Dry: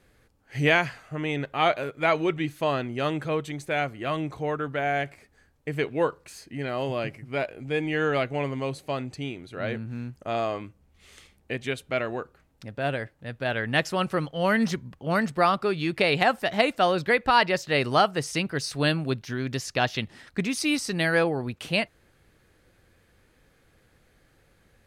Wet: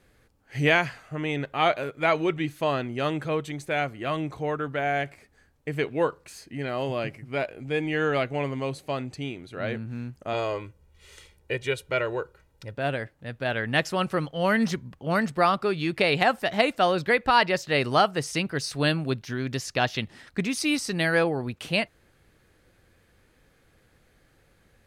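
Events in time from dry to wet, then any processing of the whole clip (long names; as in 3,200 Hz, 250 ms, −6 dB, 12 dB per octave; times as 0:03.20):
0:10.33–0:12.74: comb filter 2.1 ms, depth 68%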